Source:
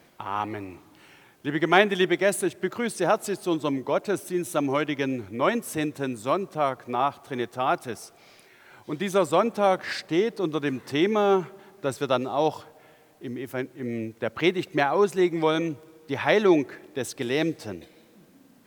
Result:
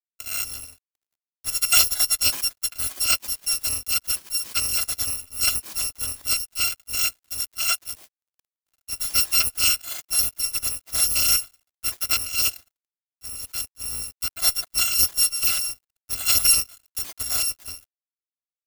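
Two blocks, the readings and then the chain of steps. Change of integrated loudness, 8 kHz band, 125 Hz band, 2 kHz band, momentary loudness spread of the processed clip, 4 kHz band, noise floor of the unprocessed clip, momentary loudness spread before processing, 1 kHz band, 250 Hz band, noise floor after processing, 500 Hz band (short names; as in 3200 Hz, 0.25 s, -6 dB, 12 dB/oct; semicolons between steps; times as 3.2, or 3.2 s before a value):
+4.5 dB, +19.0 dB, -8.5 dB, -1.5 dB, 13 LU, +11.5 dB, -56 dBFS, 12 LU, -12.0 dB, -24.0 dB, under -85 dBFS, -24.5 dB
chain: FFT order left unsorted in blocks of 256 samples; crossover distortion -43 dBFS; gain +1.5 dB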